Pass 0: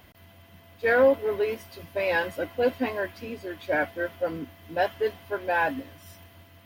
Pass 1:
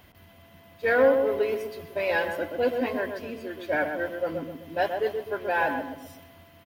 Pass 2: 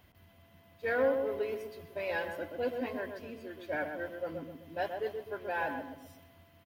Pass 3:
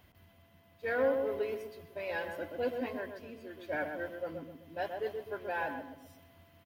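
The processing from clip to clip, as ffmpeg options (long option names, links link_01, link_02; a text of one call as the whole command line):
ffmpeg -i in.wav -filter_complex "[0:a]asplit=2[link_01][link_02];[link_02]adelay=128,lowpass=frequency=1200:poles=1,volume=-4.5dB,asplit=2[link_03][link_04];[link_04]adelay=128,lowpass=frequency=1200:poles=1,volume=0.43,asplit=2[link_05][link_06];[link_06]adelay=128,lowpass=frequency=1200:poles=1,volume=0.43,asplit=2[link_07][link_08];[link_08]adelay=128,lowpass=frequency=1200:poles=1,volume=0.43,asplit=2[link_09][link_10];[link_10]adelay=128,lowpass=frequency=1200:poles=1,volume=0.43[link_11];[link_01][link_03][link_05][link_07][link_09][link_11]amix=inputs=6:normalize=0,volume=-1dB" out.wav
ffmpeg -i in.wav -af "equalizer=frequency=83:width=0.64:gain=3.5,volume=-9dB" out.wav
ffmpeg -i in.wav -af "tremolo=f=0.76:d=0.28" out.wav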